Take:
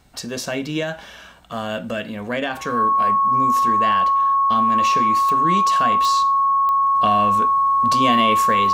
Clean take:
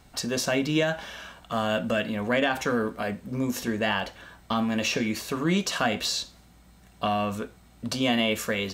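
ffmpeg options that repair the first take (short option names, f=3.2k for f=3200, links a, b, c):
-af "adeclick=t=4,bandreject=f=1.1k:w=30,asetnsamples=n=441:p=0,asendcmd='6.95 volume volume -4dB',volume=0dB"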